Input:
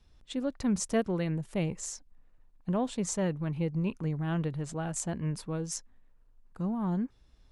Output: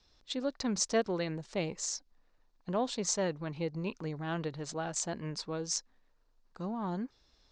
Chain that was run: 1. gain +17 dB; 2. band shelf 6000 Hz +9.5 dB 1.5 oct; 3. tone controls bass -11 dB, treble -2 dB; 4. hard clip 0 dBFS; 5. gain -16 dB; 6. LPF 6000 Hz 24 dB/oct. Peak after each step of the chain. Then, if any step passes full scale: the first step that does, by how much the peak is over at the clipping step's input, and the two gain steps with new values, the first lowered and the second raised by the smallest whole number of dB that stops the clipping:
+0.5, +8.5, +6.5, 0.0, -16.0, -18.0 dBFS; step 1, 6.5 dB; step 1 +10 dB, step 5 -9 dB

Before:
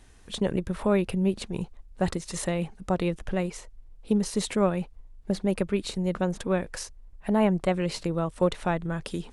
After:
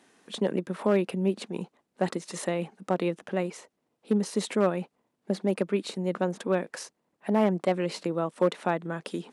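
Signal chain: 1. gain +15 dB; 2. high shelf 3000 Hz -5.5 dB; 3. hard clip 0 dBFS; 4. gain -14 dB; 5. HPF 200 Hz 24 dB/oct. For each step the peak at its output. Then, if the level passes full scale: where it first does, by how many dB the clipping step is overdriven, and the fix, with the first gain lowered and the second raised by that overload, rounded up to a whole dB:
+5.0, +4.5, 0.0, -14.0, -11.0 dBFS; step 1, 4.5 dB; step 1 +10 dB, step 4 -9 dB

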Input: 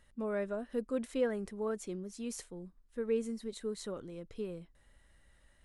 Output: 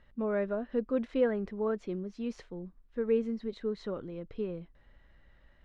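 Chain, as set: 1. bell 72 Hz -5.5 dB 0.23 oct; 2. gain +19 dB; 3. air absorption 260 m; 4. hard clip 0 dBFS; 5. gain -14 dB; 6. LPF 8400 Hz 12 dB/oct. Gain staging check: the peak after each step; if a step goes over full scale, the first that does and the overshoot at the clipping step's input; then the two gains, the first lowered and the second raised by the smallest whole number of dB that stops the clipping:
-21.0, -2.0, -2.5, -2.5, -16.5, -16.5 dBFS; no overload

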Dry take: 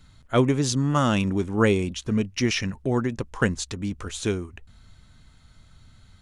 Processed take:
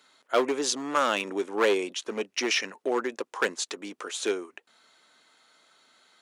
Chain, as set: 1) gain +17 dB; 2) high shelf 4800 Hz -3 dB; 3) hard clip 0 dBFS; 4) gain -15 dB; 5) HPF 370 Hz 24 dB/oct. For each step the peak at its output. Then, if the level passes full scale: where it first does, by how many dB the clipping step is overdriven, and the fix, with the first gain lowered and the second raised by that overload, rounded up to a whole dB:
+10.0, +10.0, 0.0, -15.0, -9.5 dBFS; step 1, 10.0 dB; step 1 +7 dB, step 4 -5 dB

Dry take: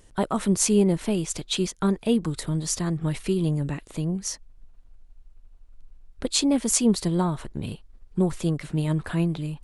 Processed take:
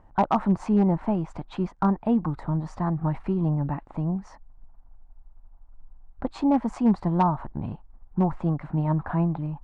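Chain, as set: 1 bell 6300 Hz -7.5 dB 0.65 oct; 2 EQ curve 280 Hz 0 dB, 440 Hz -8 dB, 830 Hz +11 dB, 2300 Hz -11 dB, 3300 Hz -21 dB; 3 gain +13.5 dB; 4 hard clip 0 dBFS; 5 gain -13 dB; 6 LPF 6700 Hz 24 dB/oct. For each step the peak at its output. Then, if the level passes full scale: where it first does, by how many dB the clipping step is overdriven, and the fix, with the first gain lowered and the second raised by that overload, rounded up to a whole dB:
-8.5, -9.0, +4.5, 0.0, -13.0, -12.5 dBFS; step 3, 4.5 dB; step 3 +8.5 dB, step 5 -8 dB

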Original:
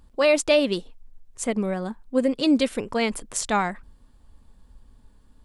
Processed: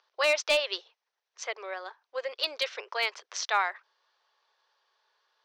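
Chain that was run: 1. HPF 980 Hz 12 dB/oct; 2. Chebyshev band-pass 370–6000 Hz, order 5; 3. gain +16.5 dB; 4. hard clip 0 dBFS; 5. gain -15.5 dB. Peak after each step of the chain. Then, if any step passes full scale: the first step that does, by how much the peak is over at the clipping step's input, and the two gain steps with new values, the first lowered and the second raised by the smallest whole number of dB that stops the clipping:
-8.5, -10.5, +6.0, 0.0, -15.5 dBFS; step 3, 6.0 dB; step 3 +10.5 dB, step 5 -9.5 dB

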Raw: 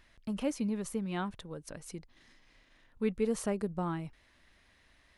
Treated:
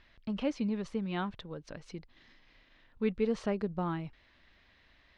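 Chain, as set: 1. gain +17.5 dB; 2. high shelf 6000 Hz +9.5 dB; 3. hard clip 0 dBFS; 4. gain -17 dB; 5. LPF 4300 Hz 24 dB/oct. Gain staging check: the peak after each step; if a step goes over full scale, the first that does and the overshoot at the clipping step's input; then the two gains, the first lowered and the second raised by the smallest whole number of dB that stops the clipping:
-2.5, -2.0, -2.0, -19.0, -19.0 dBFS; no overload

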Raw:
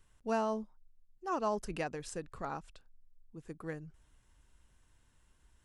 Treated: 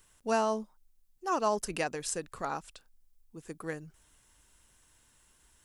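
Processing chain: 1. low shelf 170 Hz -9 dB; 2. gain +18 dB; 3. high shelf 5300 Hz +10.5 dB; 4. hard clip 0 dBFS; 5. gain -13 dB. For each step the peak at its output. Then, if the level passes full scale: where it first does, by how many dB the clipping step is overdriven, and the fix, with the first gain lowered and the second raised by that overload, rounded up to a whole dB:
-23.0, -5.0, -3.0, -3.0, -16.0 dBFS; no overload

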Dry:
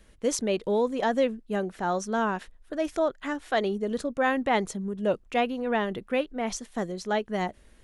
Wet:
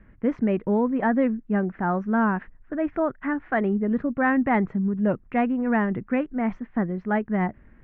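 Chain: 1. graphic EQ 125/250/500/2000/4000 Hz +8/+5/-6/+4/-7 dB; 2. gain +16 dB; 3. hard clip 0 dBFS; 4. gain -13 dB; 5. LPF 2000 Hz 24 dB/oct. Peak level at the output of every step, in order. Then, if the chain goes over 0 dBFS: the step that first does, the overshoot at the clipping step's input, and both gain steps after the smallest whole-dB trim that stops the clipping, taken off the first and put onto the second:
-12.0, +4.0, 0.0, -13.0, -12.5 dBFS; step 2, 4.0 dB; step 2 +12 dB, step 4 -9 dB

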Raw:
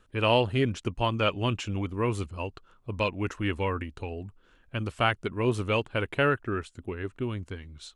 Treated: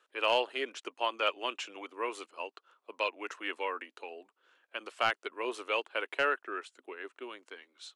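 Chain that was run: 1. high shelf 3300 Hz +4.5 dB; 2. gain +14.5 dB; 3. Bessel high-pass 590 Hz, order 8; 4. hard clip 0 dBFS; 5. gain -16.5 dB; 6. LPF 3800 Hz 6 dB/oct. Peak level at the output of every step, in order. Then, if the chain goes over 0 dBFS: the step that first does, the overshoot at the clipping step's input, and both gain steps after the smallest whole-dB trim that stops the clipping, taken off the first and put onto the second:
-7.5, +7.0, +6.0, 0.0, -16.5, -16.5 dBFS; step 2, 6.0 dB; step 2 +8.5 dB, step 5 -10.5 dB

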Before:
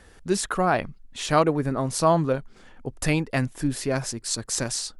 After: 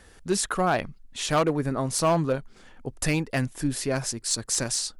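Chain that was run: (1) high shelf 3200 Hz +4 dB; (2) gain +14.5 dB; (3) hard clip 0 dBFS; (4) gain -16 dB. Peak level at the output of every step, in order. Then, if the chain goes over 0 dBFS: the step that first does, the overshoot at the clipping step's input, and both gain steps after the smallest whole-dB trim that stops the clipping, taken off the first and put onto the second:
-5.0, +9.5, 0.0, -16.0 dBFS; step 2, 9.5 dB; step 2 +4.5 dB, step 4 -6 dB

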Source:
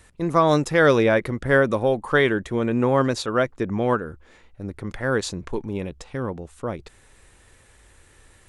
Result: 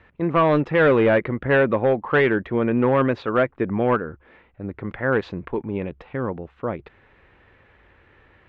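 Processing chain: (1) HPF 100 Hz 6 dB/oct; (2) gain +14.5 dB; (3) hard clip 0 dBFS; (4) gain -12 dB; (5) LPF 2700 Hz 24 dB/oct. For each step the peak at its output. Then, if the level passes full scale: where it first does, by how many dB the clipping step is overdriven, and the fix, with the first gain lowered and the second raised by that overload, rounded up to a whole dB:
-5.0, +9.5, 0.0, -12.0, -10.0 dBFS; step 2, 9.5 dB; step 2 +4.5 dB, step 4 -2 dB

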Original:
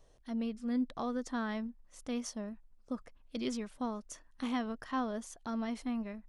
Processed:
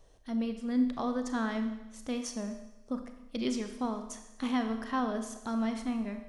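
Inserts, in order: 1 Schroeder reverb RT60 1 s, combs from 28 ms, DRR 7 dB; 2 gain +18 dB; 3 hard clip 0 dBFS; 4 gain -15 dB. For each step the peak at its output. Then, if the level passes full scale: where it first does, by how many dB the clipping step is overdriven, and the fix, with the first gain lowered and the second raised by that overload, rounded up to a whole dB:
-22.0, -4.0, -4.0, -19.0 dBFS; no overload

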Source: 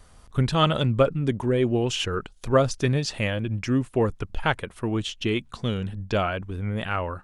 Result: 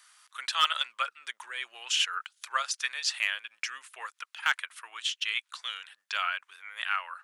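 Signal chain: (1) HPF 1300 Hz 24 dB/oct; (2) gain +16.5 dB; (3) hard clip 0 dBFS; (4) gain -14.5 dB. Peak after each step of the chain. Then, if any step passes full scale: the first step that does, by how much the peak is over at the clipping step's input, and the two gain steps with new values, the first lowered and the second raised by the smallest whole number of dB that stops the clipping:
-11.0, +5.5, 0.0, -14.5 dBFS; step 2, 5.5 dB; step 2 +10.5 dB, step 4 -8.5 dB

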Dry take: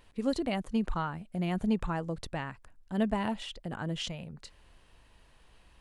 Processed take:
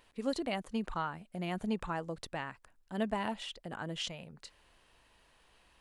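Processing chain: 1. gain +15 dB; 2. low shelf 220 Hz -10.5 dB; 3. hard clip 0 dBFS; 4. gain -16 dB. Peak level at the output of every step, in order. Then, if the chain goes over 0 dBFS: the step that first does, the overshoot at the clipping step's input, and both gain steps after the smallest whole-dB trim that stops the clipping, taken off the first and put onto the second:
-1.5, -5.0, -5.0, -21.0 dBFS; no overload

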